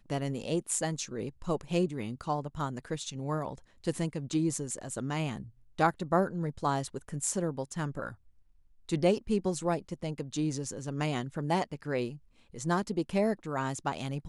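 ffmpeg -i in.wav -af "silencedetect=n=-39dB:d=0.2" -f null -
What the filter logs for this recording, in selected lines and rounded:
silence_start: 3.58
silence_end: 3.84 | silence_duration: 0.26
silence_start: 5.43
silence_end: 5.79 | silence_duration: 0.35
silence_start: 8.12
silence_end: 8.89 | silence_duration: 0.77
silence_start: 12.16
silence_end: 12.54 | silence_duration: 0.39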